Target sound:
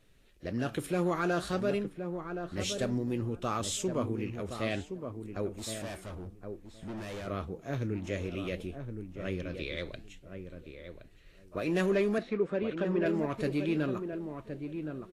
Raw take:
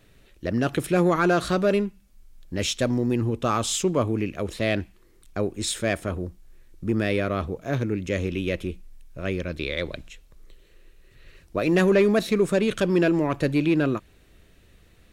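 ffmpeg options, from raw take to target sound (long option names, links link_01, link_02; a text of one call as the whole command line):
ffmpeg -i in.wav -filter_complex "[0:a]flanger=delay=1.5:depth=9.4:regen=88:speed=0.56:shape=triangular,asettb=1/sr,asplit=3[link_01][link_02][link_03];[link_01]atrim=end=5.584[link_04];[link_02]atrim=start=5.58:end=7.27,asetpts=PTS-STARTPTS,afade=type=in:duration=0.004:curve=qsin,afade=type=out:start_time=1.686:duration=0.004:curve=qsin,asoftclip=type=hard:threshold=-34dB[link_05];[link_03]atrim=start=7.266[link_06];[link_04][link_05]acrossfade=duration=0.004:curve1=hsin:curve2=qsin[link_07];[link_07][link_06]acrossfade=duration=0.004:curve1=qsin:curve2=hsin,asettb=1/sr,asplit=3[link_08][link_09][link_10];[link_08]atrim=end=12.184[link_11];[link_09]atrim=start=12.18:end=13.06,asetpts=PTS-STARTPTS,afade=type=in:duration=0.004:curve=qsin,afade=type=out:start_time=0.876:duration=0.004:curve=qsin,highpass=180,lowpass=2100[link_12];[link_10]atrim=start=13.056[link_13];[link_11][link_12]acrossfade=duration=0.004:curve1=hsin:curve2=qsin[link_14];[link_14][link_13]acrossfade=duration=0.004:curve1=qsin:curve2=hsin,asplit=2[link_15][link_16];[link_16]adelay=1069,lowpass=frequency=1200:poles=1,volume=-7dB,asplit=2[link_17][link_18];[link_18]adelay=1069,lowpass=frequency=1200:poles=1,volume=0.17,asplit=2[link_19][link_20];[link_20]adelay=1069,lowpass=frequency=1200:poles=1,volume=0.17[link_21];[link_15][link_17][link_19][link_21]amix=inputs=4:normalize=0,volume=-4.5dB" -ar 44100 -c:a libvorbis -b:a 32k out.ogg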